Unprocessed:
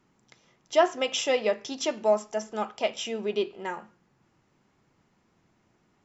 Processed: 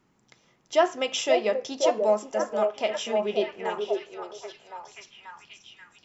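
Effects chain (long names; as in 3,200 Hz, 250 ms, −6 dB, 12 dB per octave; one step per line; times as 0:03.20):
echo through a band-pass that steps 534 ms, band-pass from 470 Hz, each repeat 0.7 octaves, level −1 dB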